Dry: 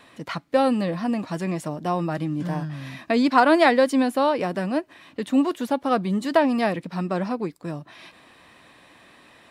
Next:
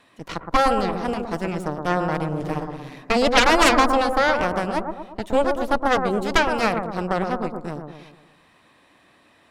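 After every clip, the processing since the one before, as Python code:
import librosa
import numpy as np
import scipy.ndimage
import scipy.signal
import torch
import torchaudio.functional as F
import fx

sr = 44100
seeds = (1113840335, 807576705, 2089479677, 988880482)

y = fx.cheby_harmonics(x, sr, harmonics=(3, 6, 7), levels_db=(-7, -8, -32), full_scale_db=-4.0)
y = fx.echo_bbd(y, sr, ms=116, stages=1024, feedback_pct=51, wet_db=-5)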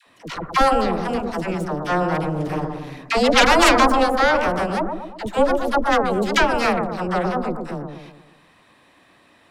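y = fx.dispersion(x, sr, late='lows', ms=72.0, hz=630.0)
y = F.gain(torch.from_numpy(y), 2.0).numpy()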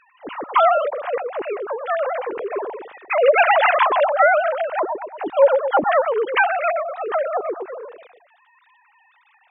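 y = fx.sine_speech(x, sr)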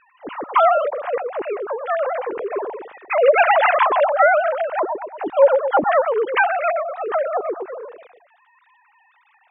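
y = fx.air_absorb(x, sr, metres=230.0)
y = F.gain(torch.from_numpy(y), 1.5).numpy()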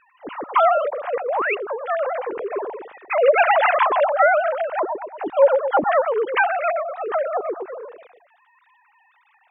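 y = fx.spec_paint(x, sr, seeds[0], shape='rise', start_s=1.28, length_s=0.27, low_hz=490.0, high_hz=2900.0, level_db=-21.0)
y = F.gain(torch.from_numpy(y), -1.5).numpy()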